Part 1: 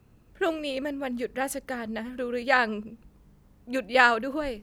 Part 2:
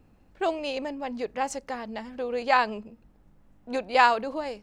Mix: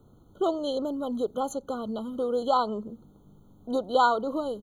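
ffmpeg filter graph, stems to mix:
-filter_complex "[0:a]acrossover=split=83|2900[a][b][c];[a]acompressor=threshold=-58dB:ratio=4[d];[b]acompressor=threshold=-37dB:ratio=4[e];[c]acompressor=threshold=-48dB:ratio=4[f];[d][e][f]amix=inputs=3:normalize=0,volume=0.5dB[g];[1:a]volume=-1,adelay=1.7,volume=-2dB[h];[g][h]amix=inputs=2:normalize=0,equalizer=f=390:w=1.4:g=2.5,afftfilt=real='re*eq(mod(floor(b*sr/1024/1500),2),0)':imag='im*eq(mod(floor(b*sr/1024/1500),2),0)':win_size=1024:overlap=0.75"

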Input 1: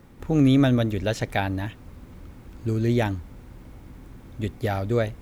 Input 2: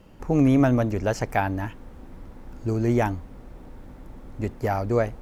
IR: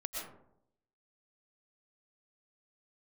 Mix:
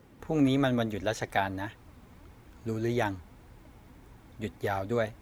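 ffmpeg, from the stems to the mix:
-filter_complex "[0:a]volume=-0.5dB[a];[1:a]volume=-1,volume=-8dB[b];[a][b]amix=inputs=2:normalize=0,highpass=59,flanger=delay=1.9:depth=3.1:regen=59:speed=1.7:shape=triangular"

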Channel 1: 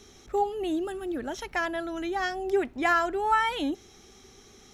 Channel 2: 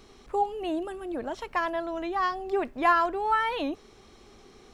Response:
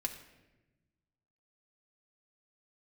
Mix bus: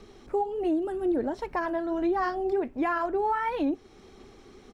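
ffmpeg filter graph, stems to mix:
-filter_complex "[0:a]lowpass=2.1k,flanger=delay=5.8:depth=5.9:regen=-66:speed=1.4:shape=sinusoidal,volume=3dB[a];[1:a]aphaser=in_gain=1:out_gain=1:delay=3.7:decay=0.4:speed=1.9:type=sinusoidal,adelay=0.7,volume=-3.5dB[b];[a][b]amix=inputs=2:normalize=0,equalizer=f=320:t=o:w=1.6:g=3.5,alimiter=limit=-19.5dB:level=0:latency=1:release=317"

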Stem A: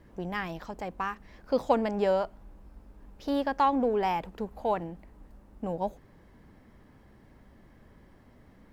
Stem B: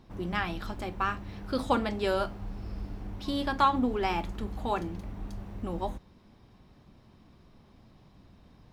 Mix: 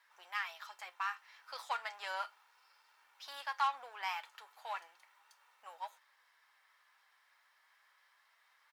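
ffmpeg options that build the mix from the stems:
-filter_complex "[0:a]volume=2dB[a];[1:a]aecho=1:1:2.2:0.65,asoftclip=type=tanh:threshold=-25dB,adelay=3.2,volume=-6dB[b];[a][b]amix=inputs=2:normalize=0,flanger=delay=3:depth=4.2:regen=78:speed=0.34:shape=triangular,highpass=f=1.1k:w=0.5412,highpass=f=1.1k:w=1.3066"

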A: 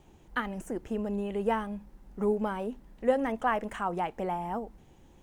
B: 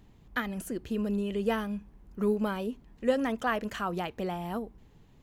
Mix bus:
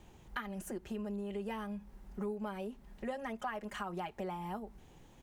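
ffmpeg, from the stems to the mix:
-filter_complex "[0:a]lowshelf=f=410:g=-9,volume=1dB[a];[1:a]adelay=4.7,volume=-3dB[b];[a][b]amix=inputs=2:normalize=0,acompressor=threshold=-40dB:ratio=3"

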